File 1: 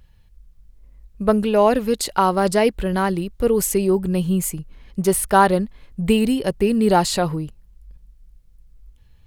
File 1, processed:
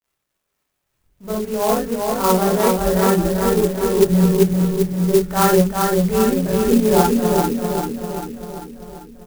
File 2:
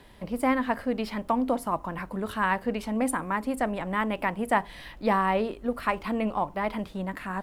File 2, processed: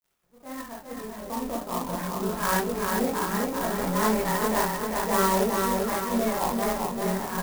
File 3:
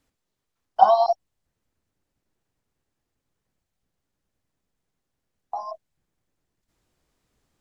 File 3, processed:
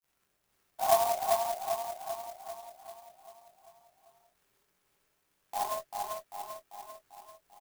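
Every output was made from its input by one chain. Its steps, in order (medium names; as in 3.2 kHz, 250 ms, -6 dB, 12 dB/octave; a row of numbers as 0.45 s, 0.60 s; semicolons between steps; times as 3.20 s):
fade-in on the opening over 2.40 s; low-pass 2.3 kHz 24 dB/octave; hum notches 50/100/150/200/250 Hz; in parallel at -2.5 dB: compression, threshold -30 dBFS; on the sum: crossover distortion -45.5 dBFS; transient shaper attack -10 dB, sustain -6 dB; crackle 180 per s -56 dBFS; chorus voices 4, 0.3 Hz, delay 22 ms, depth 1.3 ms; on a send: feedback delay 393 ms, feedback 56%, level -3.5 dB; on the sum: gated-style reverb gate 80 ms rising, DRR -2.5 dB; sampling jitter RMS 0.068 ms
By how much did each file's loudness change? +2.0 LU, +2.0 LU, -13.0 LU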